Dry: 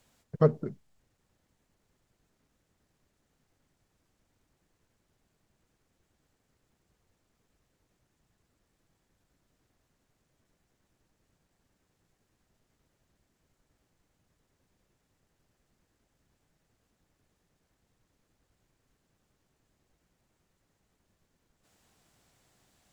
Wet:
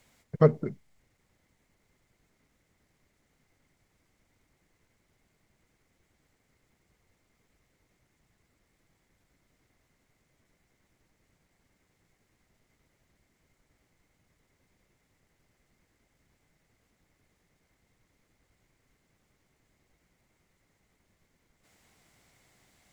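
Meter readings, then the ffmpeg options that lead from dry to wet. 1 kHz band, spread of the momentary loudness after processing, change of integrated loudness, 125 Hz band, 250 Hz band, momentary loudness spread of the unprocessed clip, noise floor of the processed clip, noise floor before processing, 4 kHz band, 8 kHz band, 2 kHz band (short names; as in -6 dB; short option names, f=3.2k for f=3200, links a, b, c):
+2.5 dB, 14 LU, +2.5 dB, +2.5 dB, +2.5 dB, 14 LU, -74 dBFS, -77 dBFS, +2.5 dB, n/a, +5.5 dB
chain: -af "equalizer=f=2.1k:t=o:w=0.21:g=10.5,volume=2.5dB"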